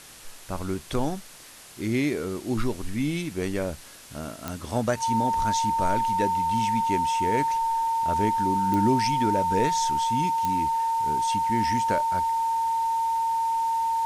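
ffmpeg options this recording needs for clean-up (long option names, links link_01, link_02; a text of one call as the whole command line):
ffmpeg -i in.wav -af "adeclick=threshold=4,bandreject=frequency=910:width=30,afwtdn=0.0056" out.wav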